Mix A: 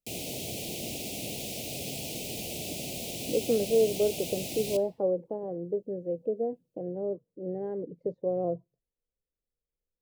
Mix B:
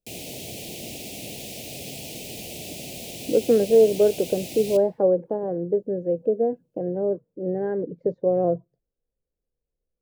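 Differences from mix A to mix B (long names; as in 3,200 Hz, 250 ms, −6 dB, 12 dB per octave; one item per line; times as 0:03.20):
speech +8.0 dB
master: add parametric band 1,600 Hz +11 dB 0.42 octaves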